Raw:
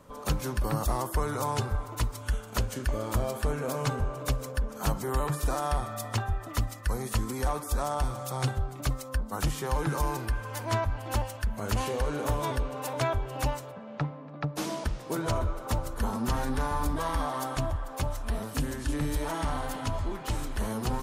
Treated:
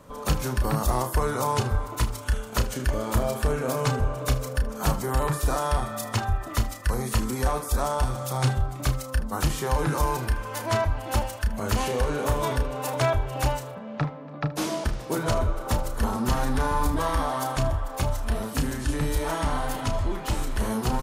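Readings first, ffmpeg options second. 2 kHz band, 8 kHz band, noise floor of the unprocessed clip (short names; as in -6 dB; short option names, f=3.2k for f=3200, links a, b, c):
+4.5 dB, +4.5 dB, -43 dBFS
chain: -af "aecho=1:1:32|77:0.398|0.141,volume=4dB"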